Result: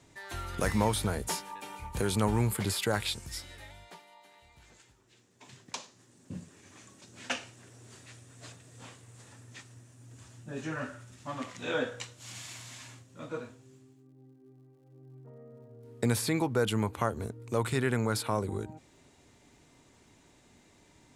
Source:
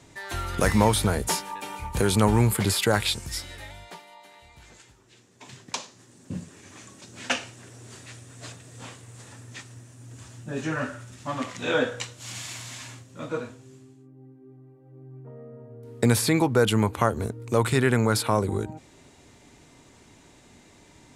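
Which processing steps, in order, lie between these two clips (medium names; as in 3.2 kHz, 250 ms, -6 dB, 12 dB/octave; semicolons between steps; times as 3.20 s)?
crackle 140 per s -58 dBFS; trim -7.5 dB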